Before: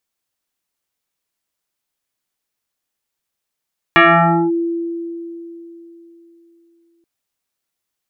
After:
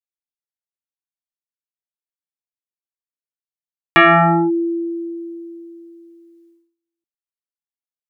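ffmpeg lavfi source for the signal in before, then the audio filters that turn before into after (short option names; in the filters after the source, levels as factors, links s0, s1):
-f lavfi -i "aevalsrc='0.562*pow(10,-3*t/3.55)*sin(2*PI*337*t+4.4*clip(1-t/0.55,0,1)*sin(2*PI*1.5*337*t))':d=3.08:s=44100"
-af "agate=range=0.0398:threshold=0.00251:ratio=16:detection=peak"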